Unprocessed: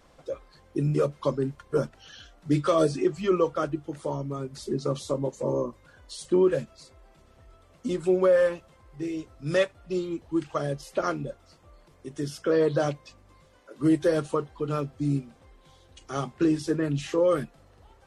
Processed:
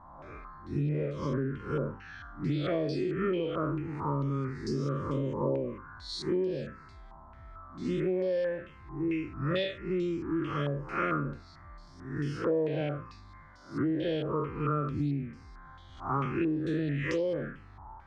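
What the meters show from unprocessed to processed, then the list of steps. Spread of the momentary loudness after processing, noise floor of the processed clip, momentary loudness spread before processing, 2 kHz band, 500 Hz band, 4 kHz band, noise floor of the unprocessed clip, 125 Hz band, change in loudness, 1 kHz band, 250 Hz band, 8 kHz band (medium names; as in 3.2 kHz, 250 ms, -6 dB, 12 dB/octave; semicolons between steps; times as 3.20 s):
18 LU, -52 dBFS, 15 LU, -2.0 dB, -7.0 dB, -2.0 dB, -58 dBFS, -1.0 dB, -5.0 dB, -2.5 dB, -4.0 dB, under -10 dB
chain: spectral blur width 146 ms; touch-sensitive phaser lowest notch 450 Hz, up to 1.3 kHz, full sweep at -22.5 dBFS; compression 12:1, threshold -34 dBFS, peak gain reduction 14 dB; step-sequenced low-pass 4.5 Hz 970–5000 Hz; trim +7 dB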